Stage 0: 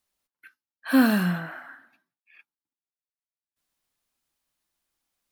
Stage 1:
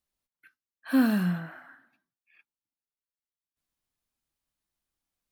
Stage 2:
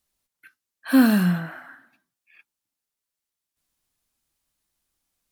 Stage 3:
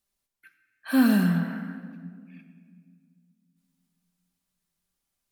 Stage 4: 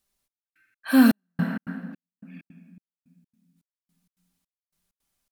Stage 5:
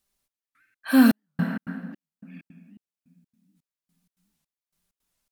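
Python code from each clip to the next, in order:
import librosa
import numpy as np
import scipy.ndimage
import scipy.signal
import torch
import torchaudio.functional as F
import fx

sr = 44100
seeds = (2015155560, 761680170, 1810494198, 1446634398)

y1 = fx.low_shelf(x, sr, hz=220.0, db=9.5)
y1 = y1 * librosa.db_to_amplitude(-7.5)
y2 = fx.peak_eq(y1, sr, hz=10000.0, db=4.5, octaves=2.1)
y2 = y2 * librosa.db_to_amplitude(6.5)
y3 = fx.room_shoebox(y2, sr, seeds[0], volume_m3=3400.0, walls='mixed', distance_m=1.2)
y3 = y3 * librosa.db_to_amplitude(-5.0)
y4 = fx.step_gate(y3, sr, bpm=162, pattern='xxx...xx.', floor_db=-60.0, edge_ms=4.5)
y4 = y4 * librosa.db_to_amplitude(4.0)
y5 = fx.record_warp(y4, sr, rpm=78.0, depth_cents=250.0)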